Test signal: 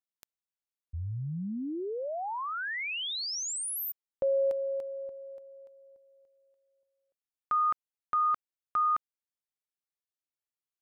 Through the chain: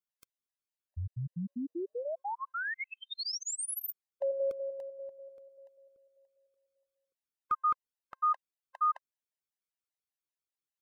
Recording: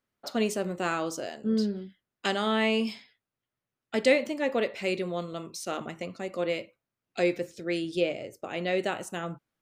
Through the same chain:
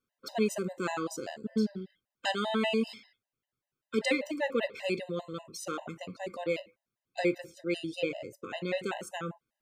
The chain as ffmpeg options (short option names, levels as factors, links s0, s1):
-af "afftfilt=real='re*gt(sin(2*PI*5.1*pts/sr)*(1-2*mod(floor(b*sr/1024/520),2)),0)':imag='im*gt(sin(2*PI*5.1*pts/sr)*(1-2*mod(floor(b*sr/1024/520),2)),0)':win_size=1024:overlap=0.75"